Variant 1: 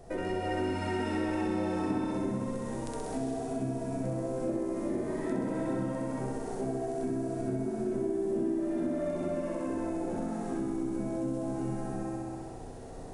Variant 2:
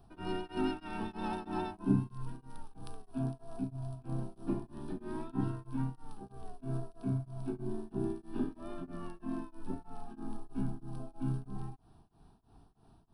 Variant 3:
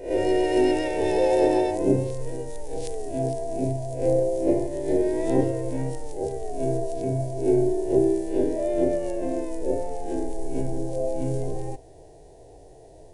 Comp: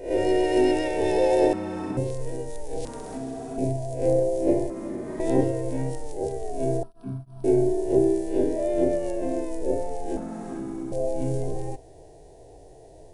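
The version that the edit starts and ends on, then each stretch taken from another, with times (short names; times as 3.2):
3
1.53–1.97 from 1
2.85–3.58 from 1
4.7–5.2 from 1
6.83–7.44 from 2
10.17–10.92 from 1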